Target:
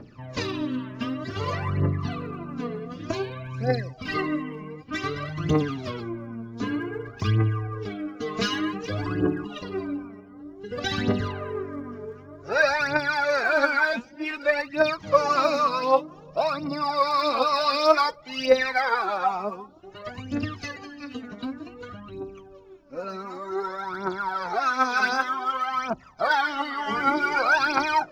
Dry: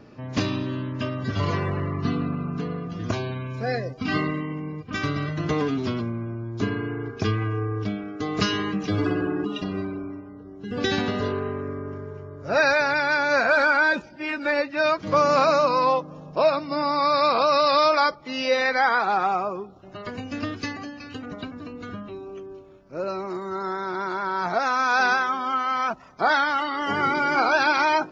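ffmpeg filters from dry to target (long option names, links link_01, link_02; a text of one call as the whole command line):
ffmpeg -i in.wav -af "aphaser=in_gain=1:out_gain=1:delay=4.8:decay=0.74:speed=0.54:type=triangular,volume=-5dB" out.wav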